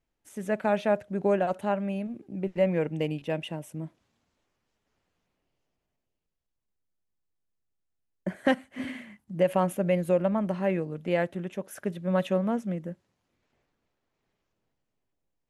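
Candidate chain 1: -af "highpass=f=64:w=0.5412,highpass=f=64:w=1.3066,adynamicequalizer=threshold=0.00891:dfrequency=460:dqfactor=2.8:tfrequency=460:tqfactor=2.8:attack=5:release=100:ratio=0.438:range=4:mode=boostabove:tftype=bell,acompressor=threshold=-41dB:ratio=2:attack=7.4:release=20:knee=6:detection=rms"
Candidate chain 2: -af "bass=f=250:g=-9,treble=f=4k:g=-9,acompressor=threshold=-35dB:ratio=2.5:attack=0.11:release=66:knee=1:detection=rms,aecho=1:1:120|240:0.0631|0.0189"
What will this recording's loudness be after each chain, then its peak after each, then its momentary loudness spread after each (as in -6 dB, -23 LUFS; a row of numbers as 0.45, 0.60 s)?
-36.5, -40.0 LUFS; -20.5, -25.0 dBFS; 10, 9 LU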